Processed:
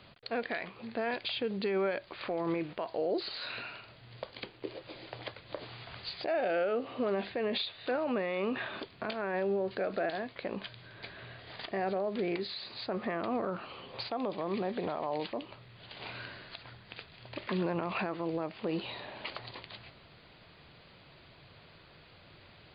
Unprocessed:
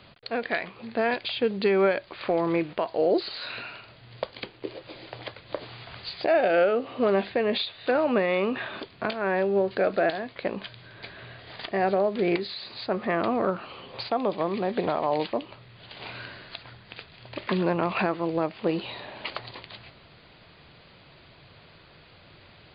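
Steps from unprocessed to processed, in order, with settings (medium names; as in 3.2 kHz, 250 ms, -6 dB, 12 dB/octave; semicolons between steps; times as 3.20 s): peak limiter -20.5 dBFS, peak gain reduction 7 dB; trim -4 dB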